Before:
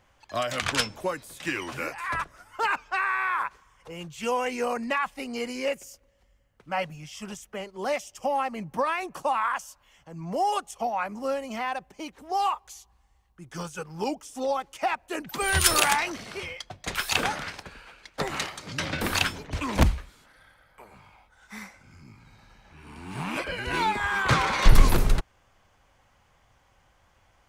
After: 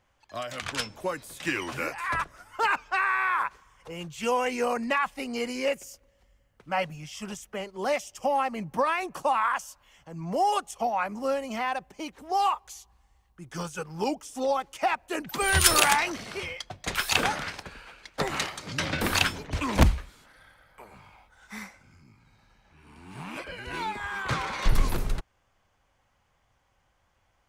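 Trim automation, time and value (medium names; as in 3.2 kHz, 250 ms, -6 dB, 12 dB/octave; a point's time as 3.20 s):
0.73 s -6.5 dB
1.25 s +1 dB
21.61 s +1 dB
22.07 s -7 dB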